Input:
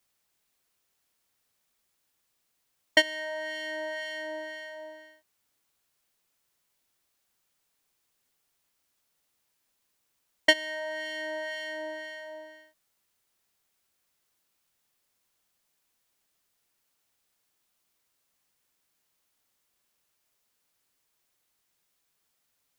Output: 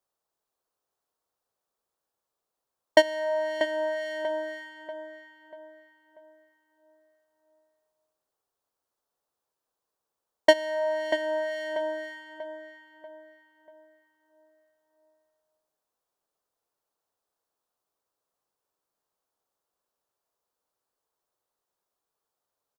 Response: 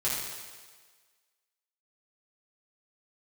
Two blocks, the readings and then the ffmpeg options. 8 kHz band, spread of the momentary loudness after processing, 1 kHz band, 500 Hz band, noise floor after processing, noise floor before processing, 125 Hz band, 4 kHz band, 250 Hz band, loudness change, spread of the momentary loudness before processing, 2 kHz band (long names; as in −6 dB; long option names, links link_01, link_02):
−2.0 dB, 18 LU, +8.0 dB, +9.0 dB, below −85 dBFS, −77 dBFS, can't be measured, −3.5 dB, +4.5 dB, +3.0 dB, 18 LU, −2.5 dB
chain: -filter_complex "[0:a]agate=range=-10dB:threshold=-40dB:ratio=16:detection=peak,firequalizer=gain_entry='entry(230,0);entry(440,10);entry(1100,8);entry(2100,-7);entry(3900,-2)':delay=0.05:min_phase=1,asplit=2[link_01][link_02];[link_02]adelay=639,lowpass=frequency=2700:poles=1,volume=-8dB,asplit=2[link_03][link_04];[link_04]adelay=639,lowpass=frequency=2700:poles=1,volume=0.43,asplit=2[link_05][link_06];[link_06]adelay=639,lowpass=frequency=2700:poles=1,volume=0.43,asplit=2[link_07][link_08];[link_08]adelay=639,lowpass=frequency=2700:poles=1,volume=0.43,asplit=2[link_09][link_10];[link_10]adelay=639,lowpass=frequency=2700:poles=1,volume=0.43[link_11];[link_01][link_03][link_05][link_07][link_09][link_11]amix=inputs=6:normalize=0"